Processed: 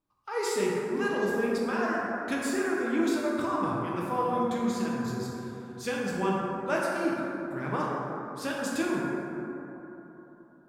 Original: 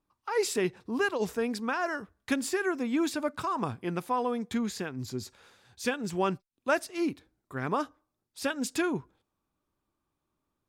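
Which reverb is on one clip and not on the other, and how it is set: plate-style reverb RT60 3.6 s, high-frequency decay 0.3×, DRR -5 dB; gain -5 dB

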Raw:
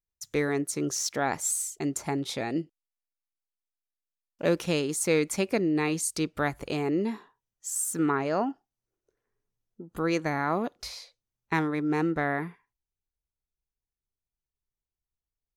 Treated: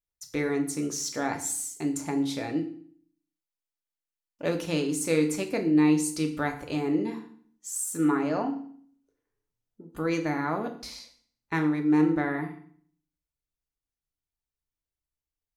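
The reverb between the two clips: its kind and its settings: FDN reverb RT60 0.53 s, low-frequency decay 1.35×, high-frequency decay 0.95×, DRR 3.5 dB; gain -3.5 dB

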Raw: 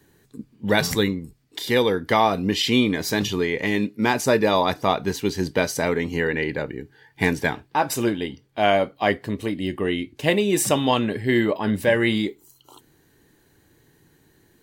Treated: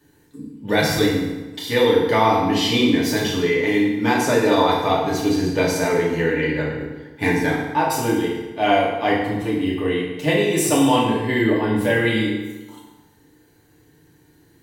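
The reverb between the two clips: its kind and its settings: FDN reverb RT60 1.2 s, low-frequency decay 1×, high-frequency decay 0.75×, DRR -5.5 dB; gain -4.5 dB

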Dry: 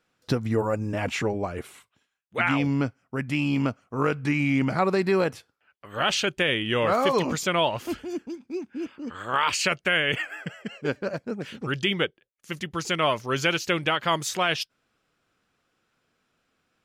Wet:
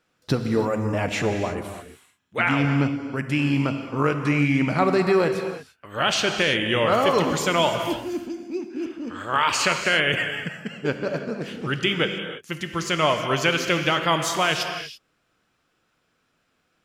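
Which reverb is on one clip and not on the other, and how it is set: non-linear reverb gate 0.36 s flat, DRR 5.5 dB; gain +2 dB

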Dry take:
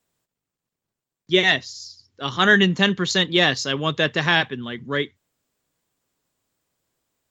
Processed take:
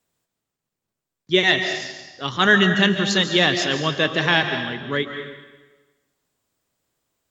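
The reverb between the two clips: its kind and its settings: digital reverb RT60 1.2 s, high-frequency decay 0.9×, pre-delay 0.105 s, DRR 6.5 dB

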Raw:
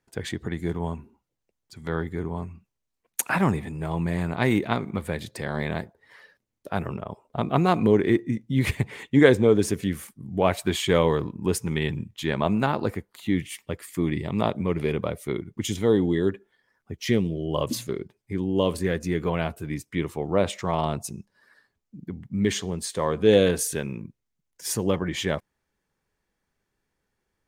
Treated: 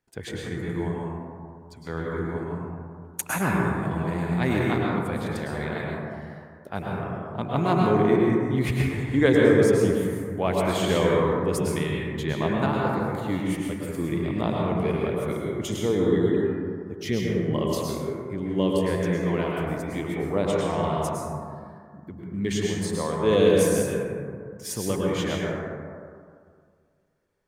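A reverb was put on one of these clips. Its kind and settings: plate-style reverb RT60 2.1 s, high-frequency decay 0.3×, pre-delay 95 ms, DRR -3 dB; gain -4.5 dB

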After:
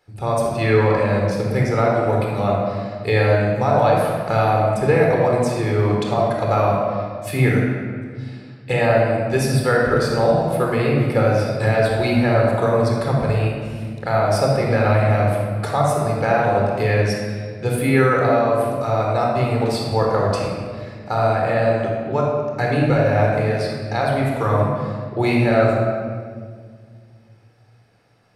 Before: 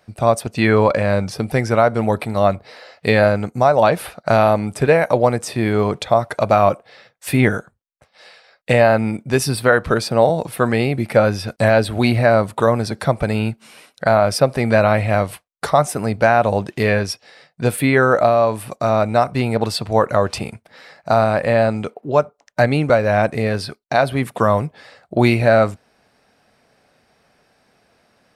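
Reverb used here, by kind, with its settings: shoebox room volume 3000 m³, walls mixed, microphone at 4.1 m; gain -8.5 dB

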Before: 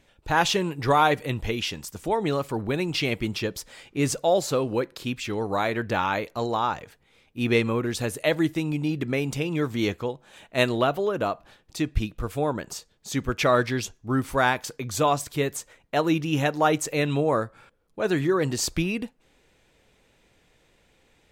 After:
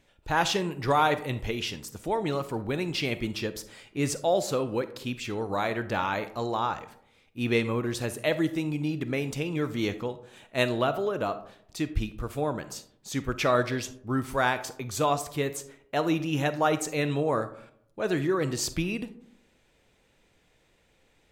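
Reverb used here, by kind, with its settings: digital reverb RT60 0.71 s, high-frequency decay 0.35×, pre-delay 5 ms, DRR 12 dB; gain -3.5 dB

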